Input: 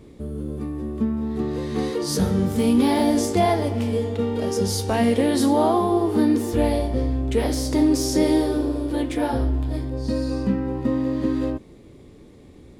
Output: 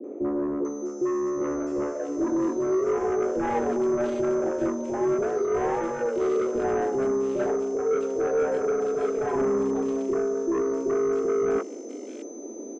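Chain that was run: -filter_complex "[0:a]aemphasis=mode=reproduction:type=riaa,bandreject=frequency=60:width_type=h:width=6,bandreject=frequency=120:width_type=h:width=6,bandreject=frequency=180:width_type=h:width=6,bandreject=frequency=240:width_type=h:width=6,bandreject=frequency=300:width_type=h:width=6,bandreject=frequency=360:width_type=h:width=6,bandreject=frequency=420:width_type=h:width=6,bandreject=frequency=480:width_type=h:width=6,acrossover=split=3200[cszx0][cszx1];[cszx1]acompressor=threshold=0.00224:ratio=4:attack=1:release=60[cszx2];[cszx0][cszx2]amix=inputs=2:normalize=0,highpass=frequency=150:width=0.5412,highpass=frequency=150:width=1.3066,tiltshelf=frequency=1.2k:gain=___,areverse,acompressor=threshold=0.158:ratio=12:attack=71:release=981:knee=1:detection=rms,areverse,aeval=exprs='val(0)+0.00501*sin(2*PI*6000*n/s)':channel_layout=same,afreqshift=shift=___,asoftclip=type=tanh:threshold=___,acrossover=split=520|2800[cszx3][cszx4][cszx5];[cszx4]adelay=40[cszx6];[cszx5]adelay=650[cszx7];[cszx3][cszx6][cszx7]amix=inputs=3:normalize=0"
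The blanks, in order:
8, 140, 0.112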